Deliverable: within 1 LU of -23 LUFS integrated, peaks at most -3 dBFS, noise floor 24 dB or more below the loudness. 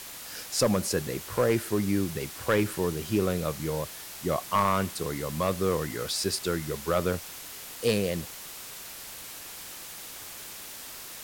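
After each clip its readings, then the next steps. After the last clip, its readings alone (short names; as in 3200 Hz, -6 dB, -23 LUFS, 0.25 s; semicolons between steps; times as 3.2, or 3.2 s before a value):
clipped 0.2%; flat tops at -16.0 dBFS; noise floor -43 dBFS; noise floor target -54 dBFS; loudness -30.0 LUFS; peak -16.0 dBFS; loudness target -23.0 LUFS
-> clip repair -16 dBFS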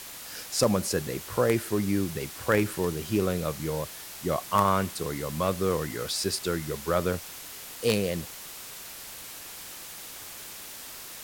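clipped 0.0%; noise floor -43 dBFS; noise floor target -54 dBFS
-> denoiser 11 dB, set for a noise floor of -43 dBFS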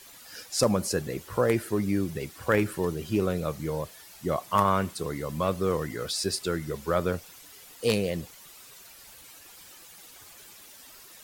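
noise floor -50 dBFS; noise floor target -53 dBFS
-> denoiser 6 dB, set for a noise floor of -50 dBFS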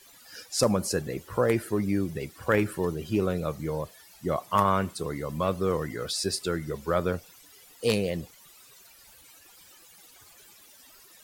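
noise floor -54 dBFS; loudness -28.5 LUFS; peak -7.5 dBFS; loudness target -23.0 LUFS
-> gain +5.5 dB; limiter -3 dBFS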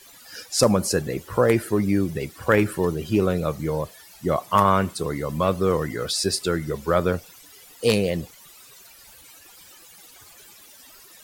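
loudness -23.0 LUFS; peak -3.0 dBFS; noise floor -49 dBFS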